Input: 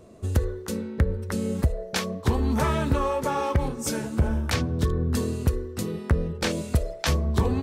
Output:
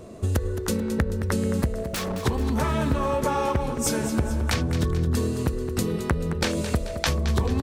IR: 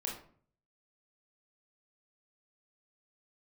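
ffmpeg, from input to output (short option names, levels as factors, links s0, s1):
-filter_complex "[0:a]acompressor=threshold=0.0355:ratio=6,asettb=1/sr,asplit=3[s0][s1][s2];[s0]atrim=end=1.784[s3];[s1]atrim=start=1.78:end=2.21,asetpts=PTS-STARTPTS,afade=t=in:d=0.004:c=qsin,afade=t=out:st=0.426:d=0.004:c=qsin,aeval=exprs='0.0282*(abs(mod(val(0)/0.0282+3,4)-2)-1)':c=same[s4];[s2]atrim=start=2.206[s5];[s3][s4]acrossfade=d=0.004:c1=hsin:c2=qsin[s6];[s6][s5]acrossfade=d=0.004:c1=qsin:c2=hsin,aecho=1:1:218|436|654|872|1090:0.282|0.144|0.0733|0.0374|0.0191,volume=2.37"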